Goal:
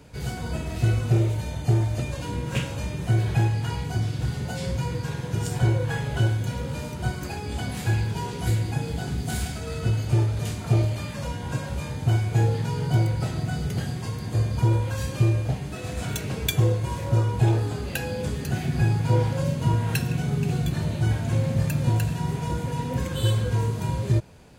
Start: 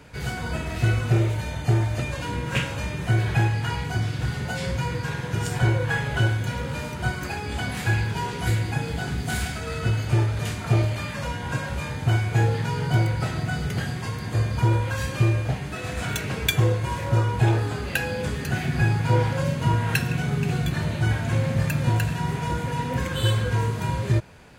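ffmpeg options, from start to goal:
-af "equalizer=f=1.7k:t=o:w=1.8:g=-8"

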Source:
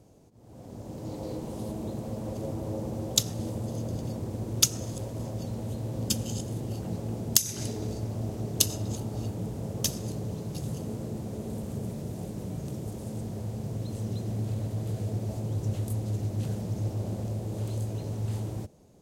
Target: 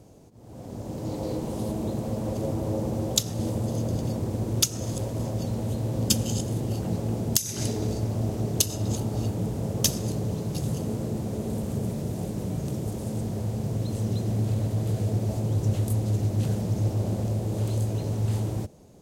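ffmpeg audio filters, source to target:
-af "alimiter=limit=-9.5dB:level=0:latency=1:release=263,volume=5.5dB"

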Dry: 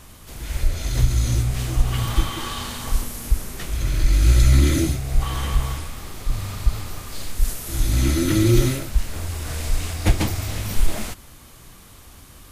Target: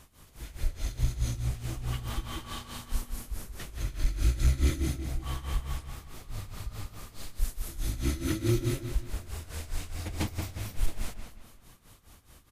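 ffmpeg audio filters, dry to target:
-filter_complex "[0:a]tremolo=f=4.7:d=0.86,asplit=2[a][b];[b]adelay=180,lowpass=f=4.5k:p=1,volume=-7dB,asplit=2[c][d];[d]adelay=180,lowpass=f=4.5k:p=1,volume=0.38,asplit=2[e][f];[f]adelay=180,lowpass=f=4.5k:p=1,volume=0.38,asplit=2[g][h];[h]adelay=180,lowpass=f=4.5k:p=1,volume=0.38[i];[a][c][e][g][i]amix=inputs=5:normalize=0,volume=8dB,asoftclip=hard,volume=-8dB,volume=-8.5dB"

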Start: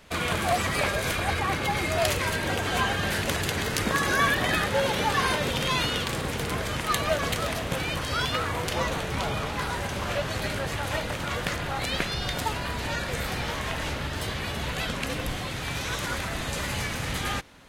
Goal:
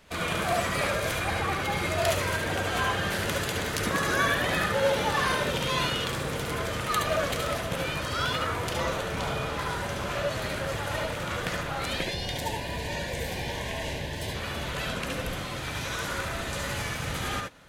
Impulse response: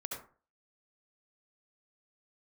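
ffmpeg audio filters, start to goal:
-filter_complex "[0:a]asettb=1/sr,asplit=3[a][b][c];[a]atrim=end=11.954[d];[b]atrim=start=11.95:end=14.35,asetpts=PTS-STARTPTS,afade=t=in:d=0.004:c=qsin,afade=t=out:st=2.396:d=0.004:c=qsin,asuperstop=centerf=1300:order=4:qfactor=2.2[e];[c]atrim=start=14.346[f];[d][e]acrossfade=d=0.004:c1=hsin:c2=qsin[g];[g][f]acrossfade=d=0.004:c1=qsin:c2=hsin[h];[1:a]atrim=start_sample=2205,afade=t=out:st=0.13:d=0.01,atrim=end_sample=6174[i];[h][i]afir=irnorm=-1:irlink=0"

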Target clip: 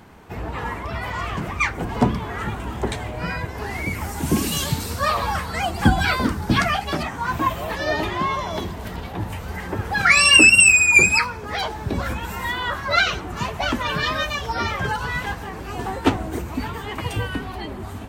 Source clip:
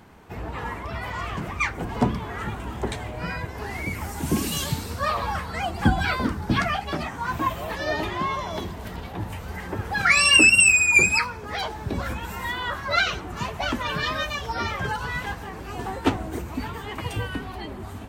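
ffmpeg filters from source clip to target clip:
-filter_complex "[0:a]asettb=1/sr,asplit=3[a][b][c];[a]atrim=end=4.804[d];[b]atrim=start=4.8:end=7.03,asetpts=PTS-STARTPTS,afade=t=in:d=0.004:c=qsin,afade=t=out:st=2.226:d=0.004:c=qsin,equalizer=f=12k:w=0.3:g=5.5[e];[c]atrim=start=7.026[f];[d][e]acrossfade=d=0.004:c1=hsin:c2=qsin[g];[g][f]acrossfade=d=0.004:c1=qsin:c2=hsin,volume=3.5dB"

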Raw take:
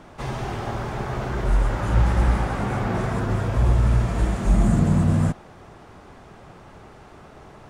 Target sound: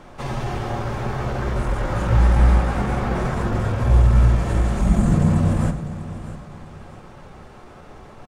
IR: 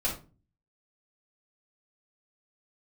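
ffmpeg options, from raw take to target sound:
-filter_complex "[0:a]atempo=0.93,aecho=1:1:649|1298|1947:0.2|0.0638|0.0204,asplit=2[a][b];[1:a]atrim=start_sample=2205[c];[b][c]afir=irnorm=-1:irlink=0,volume=-13dB[d];[a][d]amix=inputs=2:normalize=0"

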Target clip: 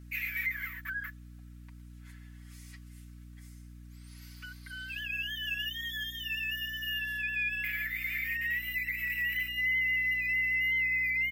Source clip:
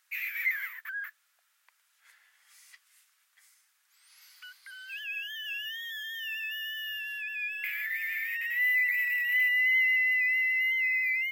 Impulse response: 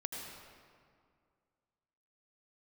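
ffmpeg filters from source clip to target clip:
-af "aecho=1:1:5.3:0.9,alimiter=limit=-23dB:level=0:latency=1:release=288,aeval=exprs='val(0)+0.00501*(sin(2*PI*60*n/s)+sin(2*PI*2*60*n/s)/2+sin(2*PI*3*60*n/s)/3+sin(2*PI*4*60*n/s)/4+sin(2*PI*5*60*n/s)/5)':c=same,volume=-1.5dB"

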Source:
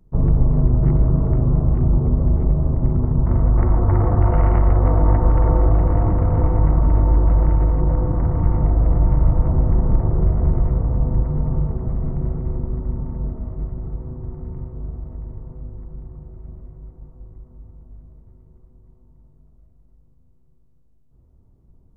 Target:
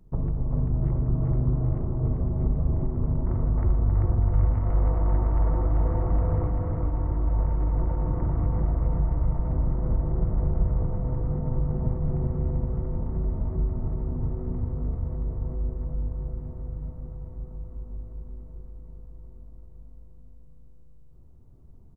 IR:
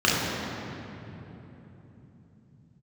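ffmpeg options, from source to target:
-filter_complex "[0:a]asettb=1/sr,asplit=3[a][b][c];[a]atrim=end=3.644[d];[b]atrim=start=3.64:end=4.53,asetpts=PTS-STARTPTS,afade=t=in:d=0.004:c=qsin,afade=t=out:st=0.886:d=0.004:c=qsin,lowshelf=f=220:g=11[e];[c]atrim=start=4.526[f];[d][e]acrossfade=d=0.004:c1=hsin:c2=qsin[g];[g][f]acrossfade=d=0.004:c1=qsin:c2=hsin,asettb=1/sr,asplit=3[h][i][j];[h]atrim=end=6.494[k];[i]atrim=start=6.49:end=7.39,asetpts=PTS-STARTPTS,afade=t=in:d=0.004:c=qsin,afade=t=out:st=0.896:d=0.004:c=qsin,agate=range=-33dB:threshold=-7dB:ratio=3:detection=peak[l];[j]atrim=start=7.386[m];[k][l]acrossfade=d=0.004:c1=hsin:c2=qsin[n];[n][m]acrossfade=d=0.004:c1=qsin:c2=hsin,acompressor=threshold=-25dB:ratio=4,asplit=2[o][p];[p]aecho=0:1:391|782|1173|1564|1955|2346|2737:0.708|0.382|0.206|0.111|0.0602|0.0325|0.0176[q];[o][q]amix=inputs=2:normalize=0"

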